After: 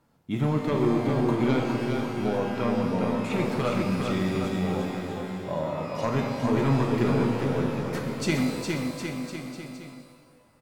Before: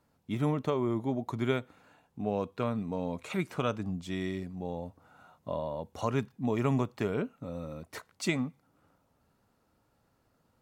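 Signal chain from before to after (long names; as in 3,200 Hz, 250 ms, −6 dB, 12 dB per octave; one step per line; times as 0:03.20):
parametric band 72 Hz −7 dB 0.68 octaves
sine wavefolder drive 4 dB, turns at −15.5 dBFS
bass and treble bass +3 dB, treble −2 dB
on a send: bouncing-ball delay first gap 410 ms, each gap 0.85×, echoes 5
on the sum: reverb with rising layers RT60 1.4 s, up +12 semitones, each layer −8 dB, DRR 2.5 dB
level −4.5 dB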